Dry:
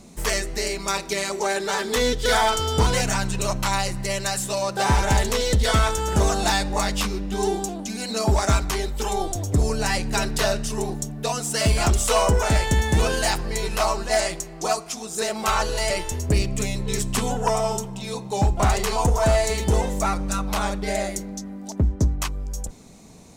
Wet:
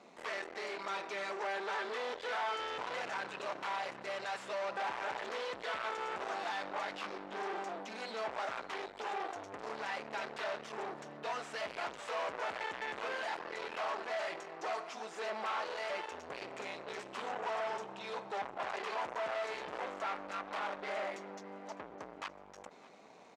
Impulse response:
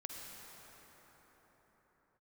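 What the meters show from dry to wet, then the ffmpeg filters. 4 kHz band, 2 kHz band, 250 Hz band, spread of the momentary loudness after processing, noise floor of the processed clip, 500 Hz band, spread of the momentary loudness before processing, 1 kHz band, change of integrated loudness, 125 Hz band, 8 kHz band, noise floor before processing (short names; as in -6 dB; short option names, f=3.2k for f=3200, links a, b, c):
-18.0 dB, -11.5 dB, -23.5 dB, 7 LU, -54 dBFS, -15.5 dB, 8 LU, -12.5 dB, -16.5 dB, -38.5 dB, -29.5 dB, -38 dBFS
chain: -af "aeval=exprs='(tanh(56.2*val(0)+0.75)-tanh(0.75))/56.2':c=same,highpass=560,lowpass=2.4k,aecho=1:1:607|1214|1821|2428:0.0891|0.0481|0.026|0.014,volume=2.5dB"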